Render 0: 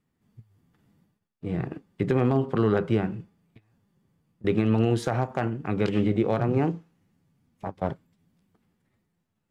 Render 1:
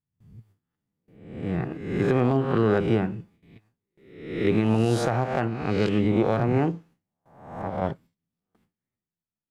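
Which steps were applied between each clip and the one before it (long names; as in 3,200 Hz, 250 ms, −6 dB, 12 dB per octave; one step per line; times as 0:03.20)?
peak hold with a rise ahead of every peak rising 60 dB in 0.78 s
noise gate with hold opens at −51 dBFS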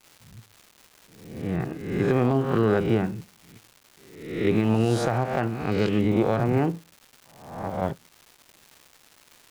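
surface crackle 450 per second −39 dBFS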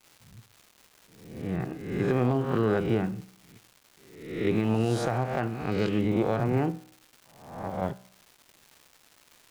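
tuned comb filter 63 Hz, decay 0.66 s, harmonics all, mix 40%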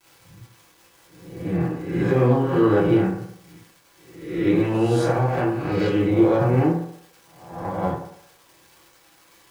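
convolution reverb RT60 0.65 s, pre-delay 3 ms, DRR −7 dB
level −2 dB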